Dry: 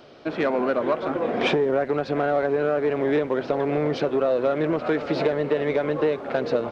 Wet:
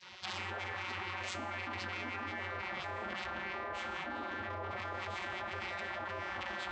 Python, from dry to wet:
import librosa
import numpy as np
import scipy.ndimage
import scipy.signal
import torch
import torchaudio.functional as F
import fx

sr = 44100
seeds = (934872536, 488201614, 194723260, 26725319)

y = fx.tracing_dist(x, sr, depth_ms=0.39)
y = fx.doppler_pass(y, sr, speed_mps=44, closest_m=7.4, pass_at_s=2.42)
y = np.clip(10.0 ** (19.5 / 20.0) * y, -1.0, 1.0) / 10.0 ** (19.5 / 20.0)
y = fx.high_shelf(y, sr, hz=2100.0, db=-11.0)
y = fx.rev_schroeder(y, sr, rt60_s=0.73, comb_ms=26, drr_db=7.5)
y = fx.vocoder(y, sr, bands=32, carrier='square', carrier_hz=92.3)
y = fx.spec_gate(y, sr, threshold_db=-30, keep='weak')
y = fx.env_flatten(y, sr, amount_pct=100)
y = F.gain(torch.from_numpy(y), 8.5).numpy()